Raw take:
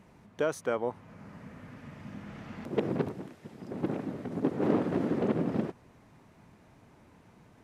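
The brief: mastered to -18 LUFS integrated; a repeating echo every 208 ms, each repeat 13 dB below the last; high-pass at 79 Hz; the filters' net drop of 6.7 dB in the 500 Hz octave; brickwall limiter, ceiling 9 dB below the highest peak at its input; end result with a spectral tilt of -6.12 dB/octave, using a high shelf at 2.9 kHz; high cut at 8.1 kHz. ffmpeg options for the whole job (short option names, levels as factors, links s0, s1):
-af "highpass=79,lowpass=8100,equalizer=f=500:t=o:g=-8.5,highshelf=f=2900:g=-5.5,alimiter=level_in=1.26:limit=0.0631:level=0:latency=1,volume=0.794,aecho=1:1:208|416|624:0.224|0.0493|0.0108,volume=11.9"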